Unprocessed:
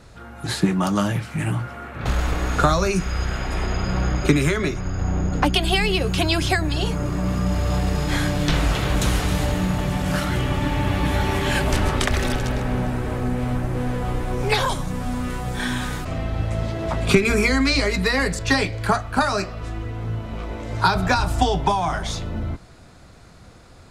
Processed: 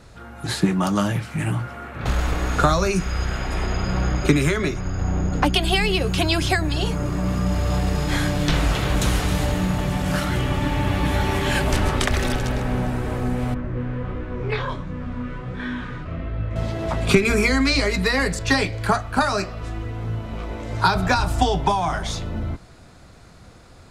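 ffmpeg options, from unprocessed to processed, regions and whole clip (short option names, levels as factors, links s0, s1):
-filter_complex "[0:a]asettb=1/sr,asplit=3[s0][s1][s2];[s0]atrim=end=13.544[s3];[s1]atrim=start=13.54:end=16.56,asetpts=PTS-STARTPTS,afade=t=in:d=0.004:c=qsin,afade=t=out:st=3.016:d=0.004:c=qsin,lowpass=2300,equalizer=f=780:w=5.2:g=-13.5,flanger=delay=19.5:depth=6.1:speed=1.4[s4];[s2]atrim=start=16.556[s5];[s3][s4]acrossfade=d=0.004:c1=hsin:c2=qsin[s6];[s6][s5]acrossfade=d=0.004:c1=qsin:c2=hsin"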